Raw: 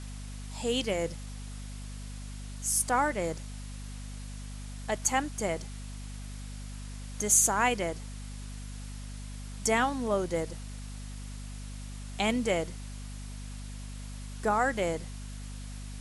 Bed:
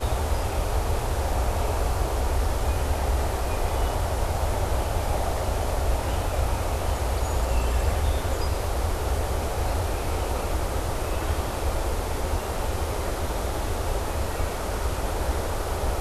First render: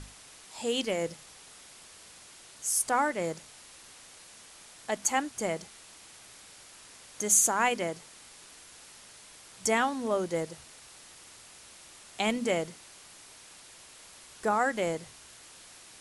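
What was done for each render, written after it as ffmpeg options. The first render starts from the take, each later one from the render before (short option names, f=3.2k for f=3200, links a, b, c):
-af "bandreject=f=50:t=h:w=6,bandreject=f=100:t=h:w=6,bandreject=f=150:t=h:w=6,bandreject=f=200:t=h:w=6,bandreject=f=250:t=h:w=6"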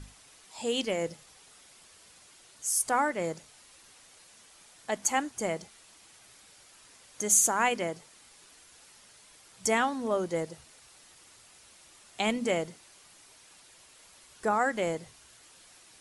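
-af "afftdn=nr=6:nf=-52"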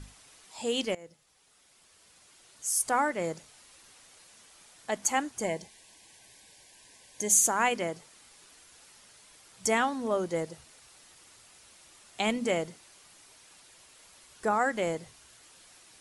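-filter_complex "[0:a]asettb=1/sr,asplit=3[a][b][c];[a]atrim=end=5.444[d];[b]atrim=start=5.44:end=7.46,asetpts=PTS-STARTPTS,afade=t=in:d=0.004:c=qsin,afade=t=out:st=2.016:d=0.004:c=qsin,asuperstop=centerf=1300:order=20:qfactor=3.4[e];[c]atrim=start=7.456[f];[d][e]acrossfade=d=0.004:c1=hsin:c2=qsin[g];[g][f]acrossfade=d=0.004:c1=qsin:c2=hsin,asplit=2[h][i];[h]atrim=end=0.95,asetpts=PTS-STARTPTS,afade=t=out:st=0.946:d=0.004:c=hsin:silence=0.112202[j];[i]atrim=start=0.95,asetpts=PTS-STARTPTS,afade=t=in:d=1.87:silence=0.112202[k];[j][k]concat=n=2:v=0:a=1"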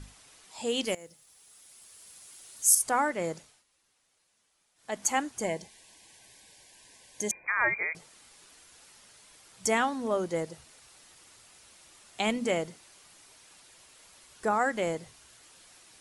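-filter_complex "[0:a]asettb=1/sr,asplit=3[a][b][c];[a]atrim=end=0.854[d];[b]atrim=start=0.85:end=2.75,asetpts=PTS-STARTPTS,afade=t=in:d=0.004:c=qsin,afade=t=out:st=1.896:d=0.004:c=qsin,aemphasis=mode=production:type=50fm[e];[c]atrim=start=2.746[f];[d][e]acrossfade=d=0.004:c1=hsin:c2=qsin[g];[g][f]acrossfade=d=0.004:c1=qsin:c2=hsin,asettb=1/sr,asplit=3[h][i][j];[h]atrim=end=7.314[k];[i]atrim=start=7.31:end=7.95,asetpts=PTS-STARTPTS,afade=t=in:d=0.004:c=qsin,afade=t=out:st=0.636:d=0.004:c=qsin,lowpass=f=2.2k:t=q:w=0.5098,lowpass=f=2.2k:t=q:w=0.6013,lowpass=f=2.2k:t=q:w=0.9,lowpass=f=2.2k:t=q:w=2.563,afreqshift=-2600[l];[j]atrim=start=7.946[m];[k][l]acrossfade=d=0.004:c1=hsin:c2=qsin[n];[n][m]acrossfade=d=0.004:c1=qsin:c2=hsin,asplit=3[o][p][q];[o]atrim=end=3.64,asetpts=PTS-STARTPTS,afade=t=out:st=3.37:d=0.27:silence=0.149624[r];[p]atrim=start=3.64:end=4.75,asetpts=PTS-STARTPTS,volume=-16.5dB[s];[q]atrim=start=4.75,asetpts=PTS-STARTPTS,afade=t=in:d=0.27:silence=0.149624[t];[r][s][t]concat=n=3:v=0:a=1"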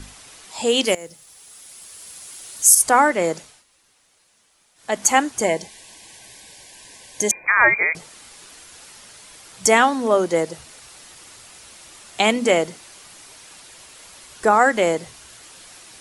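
-filter_complex "[0:a]acrossover=split=220[a][b];[a]acompressor=threshold=-51dB:ratio=6[c];[c][b]amix=inputs=2:normalize=0,alimiter=level_in=12dB:limit=-1dB:release=50:level=0:latency=1"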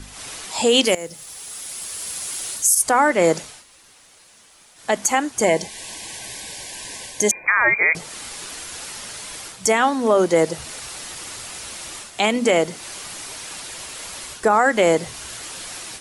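-af "dynaudnorm=f=110:g=3:m=10dB,alimiter=limit=-6dB:level=0:latency=1:release=59"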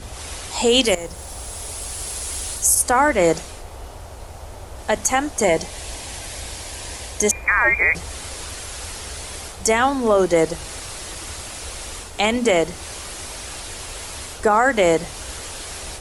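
-filter_complex "[1:a]volume=-11.5dB[a];[0:a][a]amix=inputs=2:normalize=0"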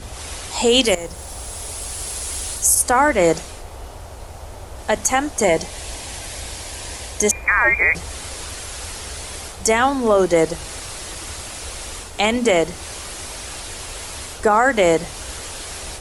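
-af "volume=1dB"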